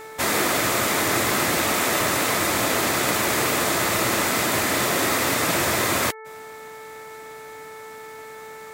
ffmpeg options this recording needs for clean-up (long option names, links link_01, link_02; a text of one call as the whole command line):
ffmpeg -i in.wav -af "bandreject=frequency=439.1:width_type=h:width=4,bandreject=frequency=878.2:width_type=h:width=4,bandreject=frequency=1317.3:width_type=h:width=4,bandreject=frequency=1756.4:width_type=h:width=4,bandreject=frequency=2195.5:width_type=h:width=4" out.wav